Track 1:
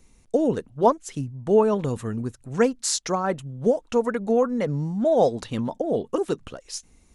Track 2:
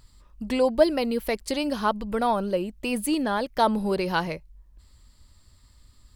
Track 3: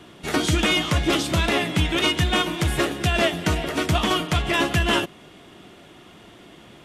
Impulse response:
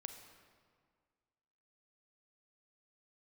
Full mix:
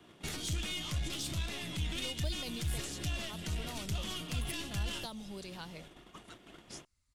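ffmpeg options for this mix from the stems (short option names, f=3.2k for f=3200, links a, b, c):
-filter_complex "[0:a]highpass=f=1.2k:w=0.5412,highpass=f=1.2k:w=1.3066,acompressor=threshold=-38dB:ratio=2.5,volume=-12dB,asplit=3[a][b][c];[b]volume=-10dB[d];[1:a]adelay=1450,volume=-3.5dB[e];[2:a]alimiter=limit=-18.5dB:level=0:latency=1:release=270,aeval=exprs='(tanh(15.8*val(0)+0.3)-tanh(0.3))/15.8':c=same,volume=-2dB[f];[c]apad=whole_len=335162[g];[e][g]sidechaincompress=threshold=-56dB:ratio=8:attack=11:release=1130[h];[3:a]atrim=start_sample=2205[i];[d][i]afir=irnorm=-1:irlink=0[j];[a][h][f][j]amix=inputs=4:normalize=0,agate=range=-11dB:threshold=-47dB:ratio=16:detection=peak,acrossover=split=160|3000[k][l][m];[l]acompressor=threshold=-46dB:ratio=6[n];[k][n][m]amix=inputs=3:normalize=0"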